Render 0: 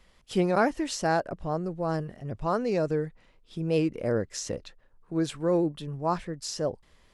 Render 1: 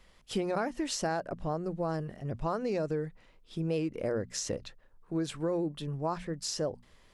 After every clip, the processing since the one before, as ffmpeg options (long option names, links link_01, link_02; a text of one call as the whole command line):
ffmpeg -i in.wav -af "bandreject=frequency=60:width_type=h:width=6,bandreject=frequency=120:width_type=h:width=6,bandreject=frequency=180:width_type=h:width=6,bandreject=frequency=240:width_type=h:width=6,acompressor=threshold=-28dB:ratio=6" out.wav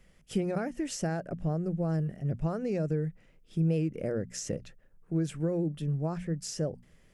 ffmpeg -i in.wav -af "equalizer=frequency=160:width_type=o:width=0.67:gain=8,equalizer=frequency=1000:width_type=o:width=0.67:gain=-11,equalizer=frequency=4000:width_type=o:width=0.67:gain=-10" out.wav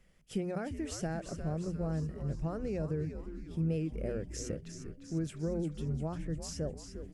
ffmpeg -i in.wav -filter_complex "[0:a]asplit=8[link_01][link_02][link_03][link_04][link_05][link_06][link_07][link_08];[link_02]adelay=351,afreqshift=-110,volume=-8.5dB[link_09];[link_03]adelay=702,afreqshift=-220,volume=-13.1dB[link_10];[link_04]adelay=1053,afreqshift=-330,volume=-17.7dB[link_11];[link_05]adelay=1404,afreqshift=-440,volume=-22.2dB[link_12];[link_06]adelay=1755,afreqshift=-550,volume=-26.8dB[link_13];[link_07]adelay=2106,afreqshift=-660,volume=-31.4dB[link_14];[link_08]adelay=2457,afreqshift=-770,volume=-36dB[link_15];[link_01][link_09][link_10][link_11][link_12][link_13][link_14][link_15]amix=inputs=8:normalize=0,volume=-5dB" out.wav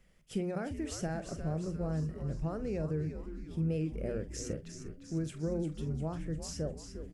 ffmpeg -i in.wav -filter_complex "[0:a]asplit=2[link_01][link_02];[link_02]adelay=45,volume=-13dB[link_03];[link_01][link_03]amix=inputs=2:normalize=0" out.wav